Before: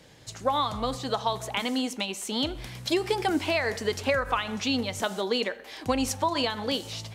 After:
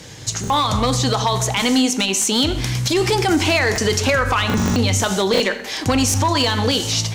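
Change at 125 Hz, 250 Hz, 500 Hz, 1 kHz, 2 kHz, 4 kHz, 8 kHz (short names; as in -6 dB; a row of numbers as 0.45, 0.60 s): +18.0, +10.5, +8.0, +8.5, +10.5, +11.0, +17.0 dB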